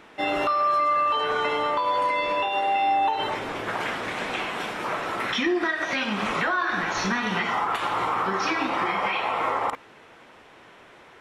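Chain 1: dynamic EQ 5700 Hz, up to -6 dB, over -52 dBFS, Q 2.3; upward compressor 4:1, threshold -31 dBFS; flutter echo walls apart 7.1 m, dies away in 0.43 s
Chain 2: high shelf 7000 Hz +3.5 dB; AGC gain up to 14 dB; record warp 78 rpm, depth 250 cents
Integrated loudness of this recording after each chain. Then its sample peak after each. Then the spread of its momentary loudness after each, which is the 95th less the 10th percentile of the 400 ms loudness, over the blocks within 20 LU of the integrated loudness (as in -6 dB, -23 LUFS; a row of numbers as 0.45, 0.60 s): -23.0, -12.5 LUFS; -11.0, -2.5 dBFS; 17, 6 LU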